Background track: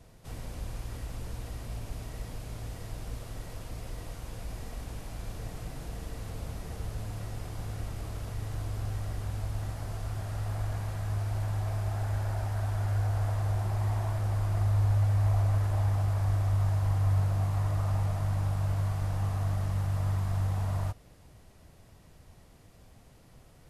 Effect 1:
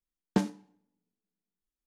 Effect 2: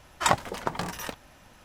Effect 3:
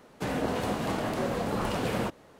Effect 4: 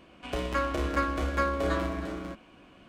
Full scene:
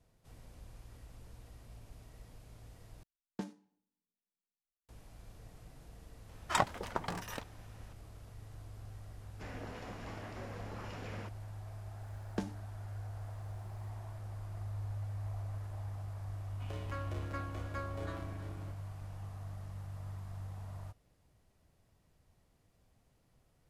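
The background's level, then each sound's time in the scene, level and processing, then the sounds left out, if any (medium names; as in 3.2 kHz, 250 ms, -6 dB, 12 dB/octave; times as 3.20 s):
background track -15 dB
3.03 s: replace with 1 -14.5 dB
6.29 s: add 2 -7 dB + treble shelf 4.6 kHz -4 dB
9.19 s: add 3 -12 dB + rippled Chebyshev low-pass 7.3 kHz, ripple 6 dB
12.02 s: add 1 -7.5 dB + three bands compressed up and down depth 70%
16.37 s: add 4 -15 dB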